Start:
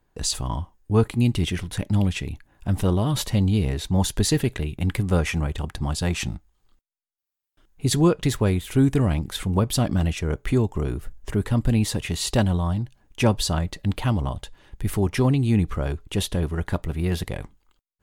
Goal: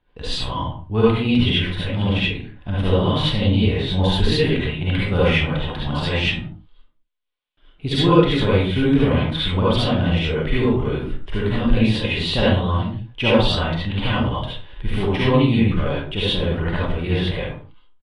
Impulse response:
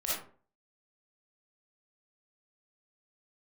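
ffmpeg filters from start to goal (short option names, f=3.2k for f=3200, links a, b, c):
-filter_complex "[0:a]aresample=22050,aresample=44100,highshelf=f=4.8k:t=q:w=3:g=-13.5[a];[1:a]atrim=start_sample=2205,afade=t=out:st=0.28:d=0.01,atrim=end_sample=12789,asetrate=34839,aresample=44100[b];[a][b]afir=irnorm=-1:irlink=0,volume=-2dB"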